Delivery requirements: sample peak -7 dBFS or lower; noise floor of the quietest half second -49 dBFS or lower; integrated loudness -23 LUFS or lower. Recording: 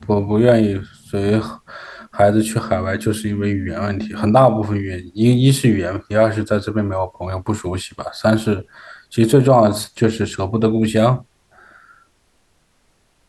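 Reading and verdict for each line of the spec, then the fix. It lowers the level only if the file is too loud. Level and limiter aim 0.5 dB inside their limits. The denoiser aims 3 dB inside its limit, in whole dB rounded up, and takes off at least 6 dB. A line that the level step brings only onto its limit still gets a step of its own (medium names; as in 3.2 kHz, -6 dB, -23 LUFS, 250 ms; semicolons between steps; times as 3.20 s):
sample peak -2.0 dBFS: fail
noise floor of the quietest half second -60 dBFS: pass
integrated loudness -17.5 LUFS: fail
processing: trim -6 dB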